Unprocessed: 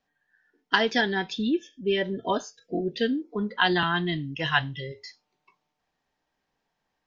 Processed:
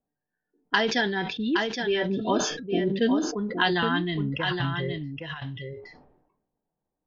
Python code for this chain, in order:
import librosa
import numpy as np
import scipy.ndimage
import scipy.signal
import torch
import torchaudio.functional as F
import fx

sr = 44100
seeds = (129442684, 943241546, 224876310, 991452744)

y = fx.env_lowpass(x, sr, base_hz=550.0, full_db=-20.0)
y = fx.peak_eq(y, sr, hz=190.0, db=5.0, octaves=2.6, at=(2.05, 3.29))
y = fx.over_compress(y, sr, threshold_db=-31.0, ratio=-0.5, at=(4.13, 4.98), fade=0.02)
y = y + 10.0 ** (-6.5 / 20.0) * np.pad(y, (int(817 * sr / 1000.0), 0))[:len(y)]
y = fx.sustainer(y, sr, db_per_s=60.0)
y = y * 10.0 ** (-1.5 / 20.0)